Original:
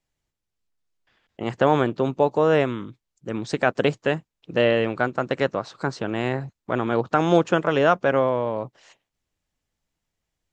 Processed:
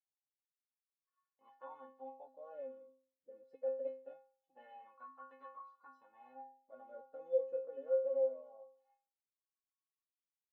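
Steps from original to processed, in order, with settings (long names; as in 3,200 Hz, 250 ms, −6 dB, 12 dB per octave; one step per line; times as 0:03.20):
spectral magnitudes quantised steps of 15 dB
LFO wah 0.23 Hz 490–1,100 Hz, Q 14
stiff-string resonator 260 Hz, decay 0.49 s, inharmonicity 0.008
level +4.5 dB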